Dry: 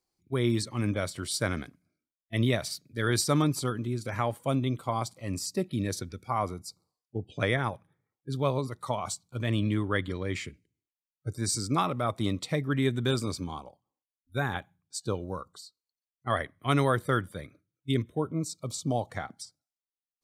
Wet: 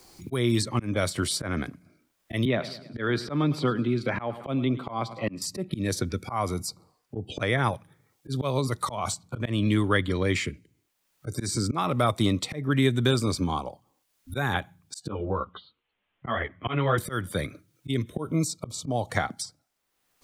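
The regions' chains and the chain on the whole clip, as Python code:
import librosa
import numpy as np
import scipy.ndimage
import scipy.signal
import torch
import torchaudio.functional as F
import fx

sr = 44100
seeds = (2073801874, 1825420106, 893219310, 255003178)

y = fx.chain(x, sr, fx.highpass(hz=140.0, slope=24),
    fx.air_absorb(metres=390.0),
    fx.echo_feedback(ms=106, feedback_pct=39, wet_db=-20.5), at=(2.45, 5.42))
y = fx.chain(y, sr, fx.steep_lowpass(hz=3300.0, slope=72),
    fx.ensemble(), at=(15.07, 16.98))
y = fx.auto_swell(y, sr, attack_ms=328.0)
y = fx.band_squash(y, sr, depth_pct=70)
y = F.gain(torch.from_numpy(y), 9.0).numpy()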